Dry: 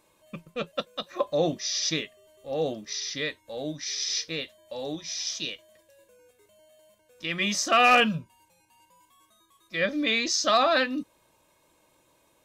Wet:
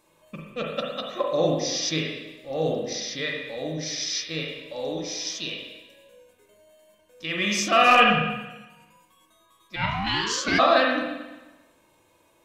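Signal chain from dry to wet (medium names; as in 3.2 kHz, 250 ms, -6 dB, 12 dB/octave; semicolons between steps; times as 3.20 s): spring tank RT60 1.1 s, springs 38/44/56 ms, chirp 70 ms, DRR -1 dB; 9.75–10.58 s: ring modulator 350 Hz -> 980 Hz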